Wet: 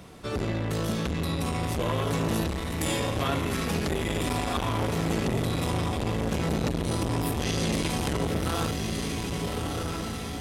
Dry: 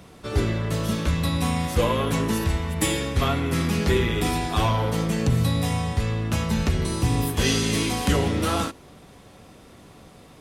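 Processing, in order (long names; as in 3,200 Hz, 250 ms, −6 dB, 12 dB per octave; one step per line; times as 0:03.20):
0:02.71–0:03.76: high-pass filter 160 Hz 6 dB per octave
brickwall limiter −16.5 dBFS, peak gain reduction 8 dB
feedback delay with all-pass diffusion 1,313 ms, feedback 54%, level −4.5 dB
saturating transformer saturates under 500 Hz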